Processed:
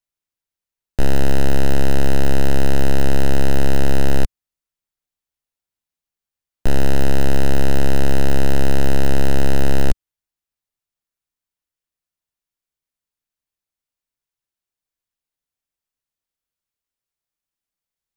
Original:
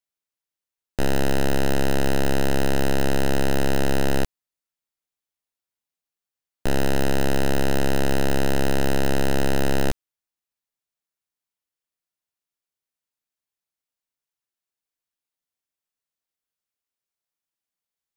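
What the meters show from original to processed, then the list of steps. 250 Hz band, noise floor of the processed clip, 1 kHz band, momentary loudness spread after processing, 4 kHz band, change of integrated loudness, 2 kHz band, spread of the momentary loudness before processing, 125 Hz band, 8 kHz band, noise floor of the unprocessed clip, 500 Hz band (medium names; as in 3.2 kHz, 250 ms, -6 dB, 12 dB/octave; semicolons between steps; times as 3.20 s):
+2.0 dB, under -85 dBFS, 0.0 dB, 4 LU, 0.0 dB, +2.5 dB, 0.0 dB, 4 LU, +6.0 dB, 0.0 dB, under -85 dBFS, +0.5 dB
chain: bass shelf 110 Hz +11 dB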